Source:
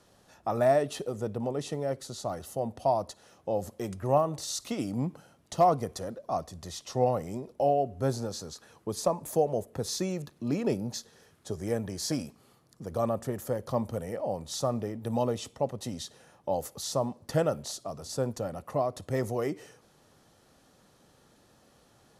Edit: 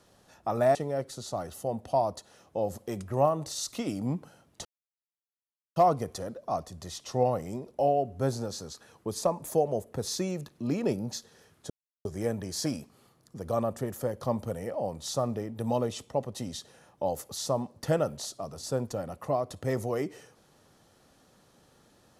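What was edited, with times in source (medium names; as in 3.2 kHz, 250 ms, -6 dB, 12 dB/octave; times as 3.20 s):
0.75–1.67 s: delete
5.57 s: insert silence 1.11 s
11.51 s: insert silence 0.35 s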